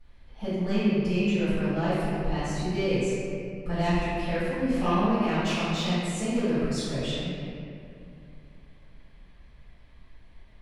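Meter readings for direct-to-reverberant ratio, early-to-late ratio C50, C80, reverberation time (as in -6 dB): -18.0 dB, -5.0 dB, -2.0 dB, 2.5 s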